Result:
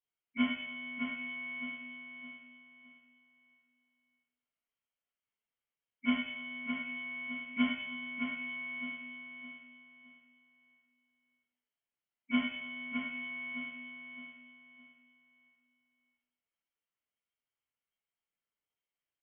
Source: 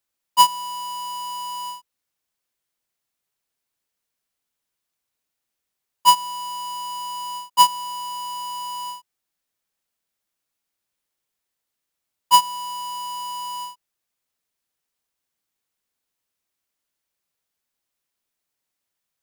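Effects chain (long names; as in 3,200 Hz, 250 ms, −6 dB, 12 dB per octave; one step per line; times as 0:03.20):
gate on every frequency bin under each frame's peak −10 dB weak
parametric band 990 Hz +8 dB 0.23 octaves
repeating echo 614 ms, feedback 31%, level −6.5 dB
rectangular room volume 220 cubic metres, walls mixed, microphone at 1.9 metres
voice inversion scrambler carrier 3,200 Hz
level −6.5 dB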